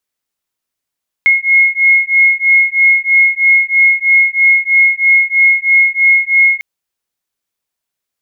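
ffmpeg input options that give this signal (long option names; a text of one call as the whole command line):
ffmpeg -f lavfi -i "aevalsrc='0.316*(sin(2*PI*2160*t)+sin(2*PI*2163.1*t))':duration=5.35:sample_rate=44100" out.wav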